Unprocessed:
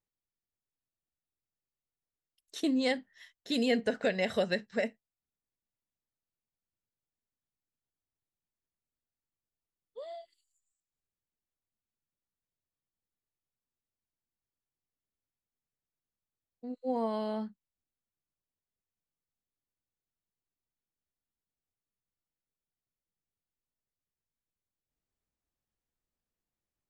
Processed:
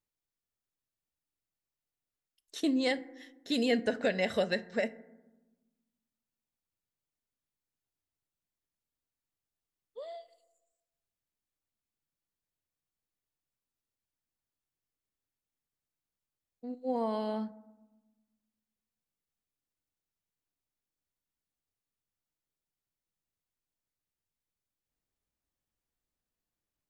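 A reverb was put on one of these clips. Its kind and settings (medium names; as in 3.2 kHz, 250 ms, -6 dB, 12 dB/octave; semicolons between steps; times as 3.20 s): FDN reverb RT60 1.1 s, low-frequency decay 1.55×, high-frequency decay 0.35×, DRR 15.5 dB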